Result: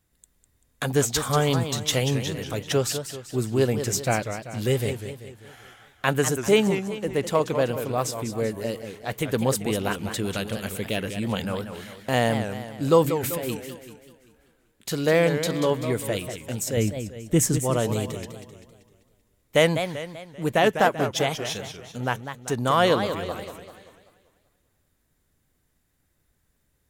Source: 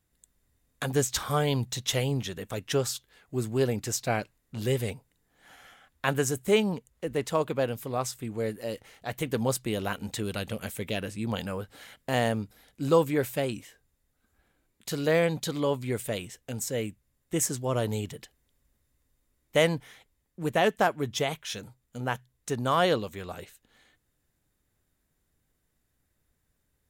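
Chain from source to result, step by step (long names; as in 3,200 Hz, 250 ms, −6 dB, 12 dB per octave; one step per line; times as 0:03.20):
0:13.04–0:13.48: compressor whose output falls as the input rises −34 dBFS, ratio −1
0:16.77–0:17.58: low-shelf EQ 220 Hz +12 dB
feedback echo with a swinging delay time 194 ms, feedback 47%, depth 217 cents, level −9 dB
level +4 dB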